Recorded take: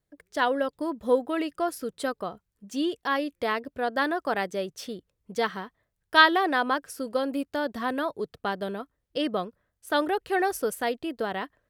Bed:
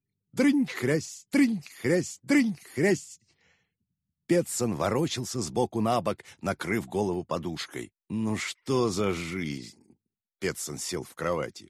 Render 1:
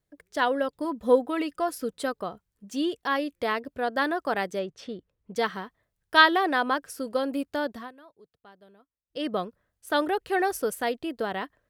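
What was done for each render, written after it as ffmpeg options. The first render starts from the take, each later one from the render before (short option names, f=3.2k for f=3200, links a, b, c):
-filter_complex "[0:a]asettb=1/sr,asplit=3[a][b][c];[a]atrim=end=0.844[d];[b]atrim=start=0.84:end=2,asetpts=PTS-STARTPTS,afade=t=in:d=0.004:c=qsin,afade=t=out:st=1.156:d=0.004:c=qsin,aecho=1:1:4:0.37,atrim=end_sample=51156[e];[c]atrim=start=1.996[f];[d][e]acrossfade=d=0.004:c1=hsin:c2=qsin[g];[g][f]acrossfade=d=0.004:c1=qsin:c2=hsin,asettb=1/sr,asplit=3[h][i][j];[h]atrim=end=4.594[k];[i]atrim=start=4.59:end=5.36,asetpts=PTS-STARTPTS,afade=t=in:d=0.004:c=qsin,afade=t=out:st=0.766:d=0.004:c=qsin,adynamicsmooth=sensitivity=1.5:basefreq=4k[l];[j]atrim=start=5.356[m];[k][l]acrossfade=d=0.004:c1=hsin:c2=qsin[n];[n][m]acrossfade=d=0.004:c1=qsin:c2=hsin,asplit=3[o][p][q];[o]atrim=end=7.92,asetpts=PTS-STARTPTS,afade=t=out:st=7.64:d=0.28:silence=0.0707946[r];[p]atrim=start=7.92:end=9.04,asetpts=PTS-STARTPTS,volume=-23dB[s];[q]atrim=start=9.04,asetpts=PTS-STARTPTS,afade=t=in:d=0.28:silence=0.0707946[t];[r][s][t]concat=n=3:v=0:a=1"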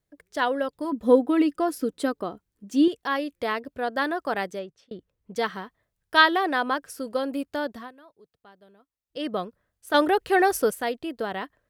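-filter_complex "[0:a]asettb=1/sr,asplit=3[a][b][c];[a]atrim=end=0.924[d];[b]atrim=start=0.92:end=2.88,asetpts=PTS-STARTPTS,afade=t=in:d=0.004:c=qsin,afade=t=out:st=1.956:d=0.004:c=qsin,equalizer=f=300:t=o:w=0.77:g=9.5[e];[c]atrim=start=2.876[f];[d][e]acrossfade=d=0.004:c1=hsin:c2=qsin[g];[g][f]acrossfade=d=0.004:c1=qsin:c2=hsin,asettb=1/sr,asplit=3[h][i][j];[h]atrim=end=9.944[k];[i]atrim=start=9.94:end=10.71,asetpts=PTS-STARTPTS,afade=t=in:d=0.004:c=qsin,afade=t=out:st=0.766:d=0.004:c=qsin,acontrast=33[l];[j]atrim=start=10.706[m];[k][l]acrossfade=d=0.004:c1=hsin:c2=qsin[n];[n][m]acrossfade=d=0.004:c1=qsin:c2=hsin,asplit=2[o][p];[o]atrim=end=4.91,asetpts=PTS-STARTPTS,afade=t=out:st=4.44:d=0.47[q];[p]atrim=start=4.91,asetpts=PTS-STARTPTS,afade=t=in:d=0.004:c=hsin[r];[q][r]concat=n=2:v=0:a=1"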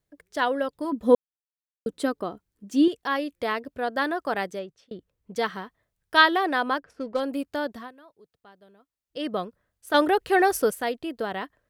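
-filter_complex "[0:a]asettb=1/sr,asplit=3[a][b][c];[a]atrim=end=6.804[d];[b]atrim=start=6.8:end=7.2,asetpts=PTS-STARTPTS,afade=t=in:d=0.004:c=qsin,afade=t=out:st=0.396:d=0.004:c=qsin,adynamicsmooth=sensitivity=7:basefreq=1.5k[e];[c]atrim=start=7.196[f];[d][e]acrossfade=d=0.004:c1=hsin:c2=qsin[g];[g][f]acrossfade=d=0.004:c1=qsin:c2=hsin,asplit=3[h][i][j];[h]atrim=end=1.15,asetpts=PTS-STARTPTS,afade=t=out:st=1.146:d=0.004:c=hsin[k];[i]atrim=start=1.15:end=1.86,asetpts=PTS-STARTPTS,volume=0[l];[j]atrim=start=1.86,asetpts=PTS-STARTPTS,afade=t=in:d=0.004:c=hsin[m];[k][l][m]concat=n=3:v=0:a=1"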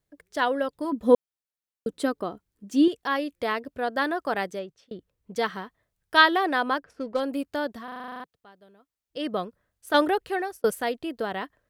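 -filter_complex "[0:a]asplit=12[a][b][c][d][e][f][g][h][i][j][k][l];[a]atrim=end=7.882[m];[b]atrim=start=7.838:end=7.882[n];[c]atrim=start=7.838:end=7.882[o];[d]atrim=start=7.838:end=7.882[p];[e]atrim=start=7.838:end=7.882[q];[f]atrim=start=7.838:end=7.882[r];[g]atrim=start=7.838:end=7.882[s];[h]atrim=start=7.838:end=7.882[t];[i]atrim=start=7.838:end=7.882[u];[j]atrim=start=7.838:end=7.882[v];[k]atrim=start=8.238:end=10.64,asetpts=PTS-STARTPTS,afade=t=out:st=1.712:d=0.69[w];[l]atrim=start=10.64,asetpts=PTS-STARTPTS,afade=t=in:d=0.004:c=hsin[x];[m][n]acrossfade=d=0.004:c1=hsin:c2=hsin[y];[y][o]acrossfade=d=0.004:c1=hsin:c2=hsin[z];[z][p]acrossfade=d=0.004:c1=hsin:c2=hsin[aa];[aa][q]acrossfade=d=0.004:c1=hsin:c2=hsin[ab];[ab][r]acrossfade=d=0.004:c1=hsin:c2=hsin[ac];[ac][s]acrossfade=d=0.004:c1=hsin:c2=hsin[ad];[ad][t]acrossfade=d=0.004:c1=hsin:c2=hsin[ae];[ae][u]acrossfade=d=0.004:c1=hsin:c2=hsin[af];[af][v]acrossfade=d=0.004:c1=hsin:c2=hsin[ag];[w][x]concat=n=2:v=0:a=1[ah];[ag][ah]acrossfade=d=0.004:c1=hsin:c2=hsin"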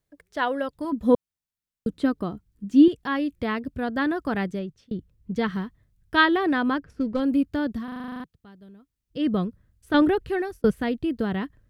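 -filter_complex "[0:a]acrossover=split=3900[a][b];[b]acompressor=threshold=-54dB:ratio=4:attack=1:release=60[c];[a][c]amix=inputs=2:normalize=0,asubboost=boost=9:cutoff=210"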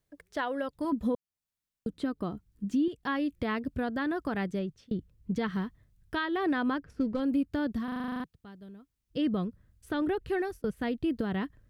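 -af "acompressor=threshold=-26dB:ratio=1.5,alimiter=limit=-21dB:level=0:latency=1:release=363"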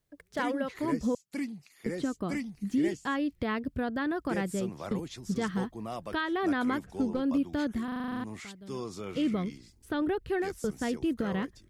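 -filter_complex "[1:a]volume=-12.5dB[a];[0:a][a]amix=inputs=2:normalize=0"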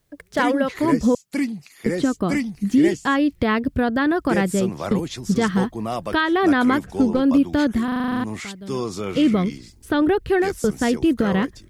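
-af "volume=11.5dB"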